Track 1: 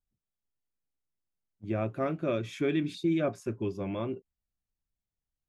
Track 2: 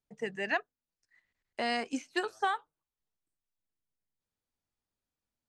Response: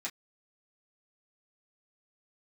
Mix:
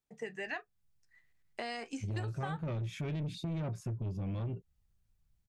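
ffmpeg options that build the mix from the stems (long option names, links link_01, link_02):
-filter_complex "[0:a]lowshelf=frequency=210:width_type=q:width=1.5:gain=13,alimiter=limit=-17.5dB:level=0:latency=1,asoftclip=type=tanh:threshold=-26.5dB,adelay=400,volume=2.5dB[link_01];[1:a]volume=-2.5dB,asplit=2[link_02][link_03];[link_03]volume=-7.5dB[link_04];[2:a]atrim=start_sample=2205[link_05];[link_04][link_05]afir=irnorm=-1:irlink=0[link_06];[link_01][link_02][link_06]amix=inputs=3:normalize=0,acompressor=threshold=-38dB:ratio=3"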